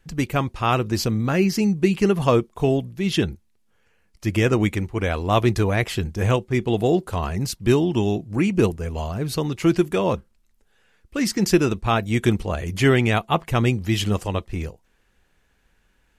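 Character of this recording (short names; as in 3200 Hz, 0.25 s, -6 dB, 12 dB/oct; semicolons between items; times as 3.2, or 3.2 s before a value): noise floor -64 dBFS; spectral tilt -6.0 dB/oct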